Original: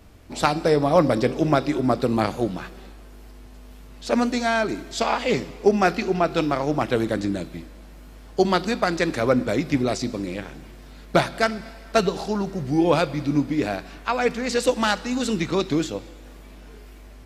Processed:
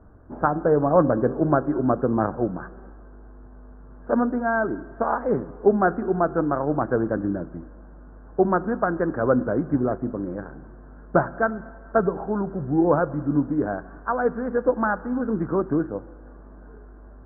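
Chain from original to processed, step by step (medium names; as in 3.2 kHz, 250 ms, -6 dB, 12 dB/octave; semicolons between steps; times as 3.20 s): Chebyshev low-pass 1.6 kHz, order 6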